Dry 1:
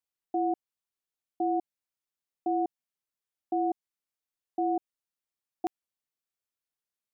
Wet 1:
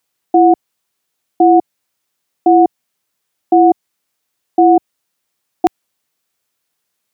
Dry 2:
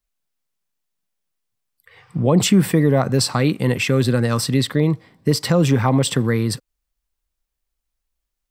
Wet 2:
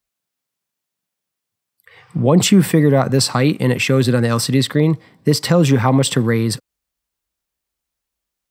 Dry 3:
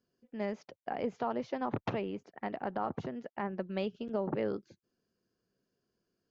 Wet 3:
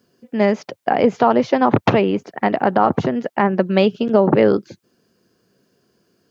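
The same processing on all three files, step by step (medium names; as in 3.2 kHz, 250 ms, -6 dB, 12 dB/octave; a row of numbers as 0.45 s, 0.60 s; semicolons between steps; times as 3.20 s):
high-pass 87 Hz; peak normalisation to -1.5 dBFS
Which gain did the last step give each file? +19.5 dB, +3.0 dB, +20.0 dB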